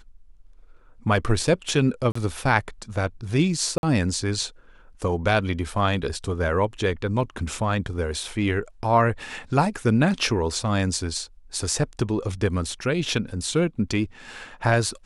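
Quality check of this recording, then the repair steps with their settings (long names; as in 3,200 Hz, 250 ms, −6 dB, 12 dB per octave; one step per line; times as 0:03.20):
0:02.12–0:02.15: drop-out 34 ms
0:03.78–0:03.83: drop-out 51 ms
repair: repair the gap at 0:02.12, 34 ms
repair the gap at 0:03.78, 51 ms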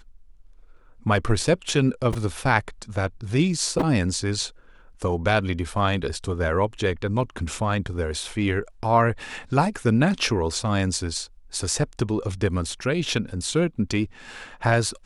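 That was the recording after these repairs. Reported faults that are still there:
none of them is left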